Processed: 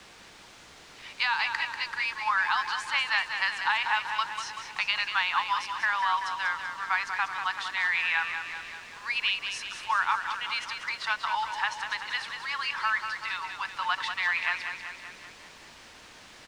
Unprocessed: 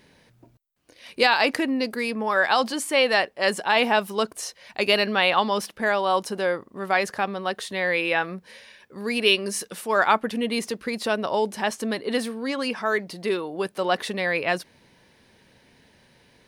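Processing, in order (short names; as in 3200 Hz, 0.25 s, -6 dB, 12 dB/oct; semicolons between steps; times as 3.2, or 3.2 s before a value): Chebyshev high-pass 910 Hz, order 5; high shelf 8200 Hz -9 dB; compressor 8:1, threshold -25 dBFS, peak gain reduction 9.5 dB; requantised 8-bit, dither triangular; air absorption 120 m; feedback echo 0.191 s, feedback 58%, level -7.5 dB; gain +3.5 dB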